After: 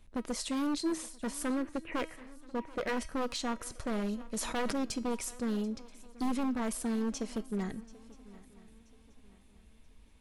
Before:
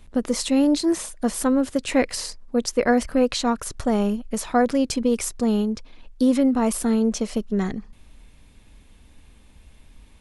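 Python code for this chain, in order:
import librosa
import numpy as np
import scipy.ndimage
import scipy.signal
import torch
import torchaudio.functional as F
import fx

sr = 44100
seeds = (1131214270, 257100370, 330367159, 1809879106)

y = fx.steep_lowpass(x, sr, hz=2400.0, slope=36, at=(1.5, 2.97))
y = 10.0 ** (-16.0 / 20.0) * (np.abs((y / 10.0 ** (-16.0 / 20.0) + 3.0) % 4.0 - 2.0) - 1.0)
y = fx.comb_fb(y, sr, f0_hz=320.0, decay_s=0.44, harmonics='all', damping=0.0, mix_pct=60)
y = fx.echo_swing(y, sr, ms=980, ratio=3, feedback_pct=34, wet_db=-20.5)
y = fx.sustainer(y, sr, db_per_s=30.0, at=(4.18, 4.85))
y = F.gain(torch.from_numpy(y), -3.5).numpy()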